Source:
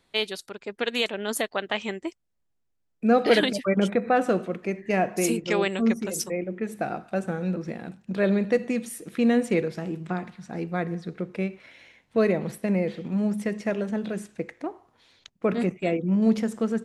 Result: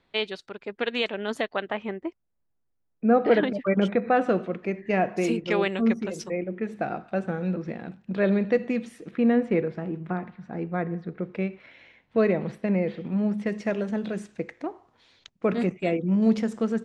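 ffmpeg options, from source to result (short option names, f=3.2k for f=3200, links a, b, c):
-af "asetnsamples=n=441:p=0,asendcmd='1.71 lowpass f 1600;3.67 lowpass f 3700;9.11 lowpass f 2000;11.23 lowpass f 3400;13.47 lowpass f 6800',lowpass=3.4k"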